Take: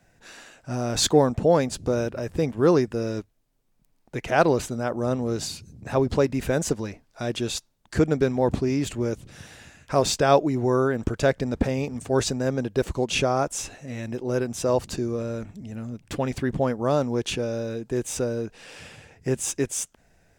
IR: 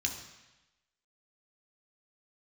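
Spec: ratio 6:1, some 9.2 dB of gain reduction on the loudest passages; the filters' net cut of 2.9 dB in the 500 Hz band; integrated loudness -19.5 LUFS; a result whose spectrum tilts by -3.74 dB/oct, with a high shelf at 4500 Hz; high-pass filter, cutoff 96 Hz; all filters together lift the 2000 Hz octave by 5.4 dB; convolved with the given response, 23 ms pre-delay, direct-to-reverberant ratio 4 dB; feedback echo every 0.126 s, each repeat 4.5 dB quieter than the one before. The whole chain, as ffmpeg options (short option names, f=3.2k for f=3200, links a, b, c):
-filter_complex "[0:a]highpass=96,equalizer=f=500:t=o:g=-4,equalizer=f=2k:t=o:g=6.5,highshelf=f=4.5k:g=7,acompressor=threshold=-23dB:ratio=6,aecho=1:1:126|252|378|504|630|756|882|1008|1134:0.596|0.357|0.214|0.129|0.0772|0.0463|0.0278|0.0167|0.01,asplit=2[a][b];[1:a]atrim=start_sample=2205,adelay=23[c];[b][c]afir=irnorm=-1:irlink=0,volume=-7.5dB[d];[a][d]amix=inputs=2:normalize=0,volume=6dB"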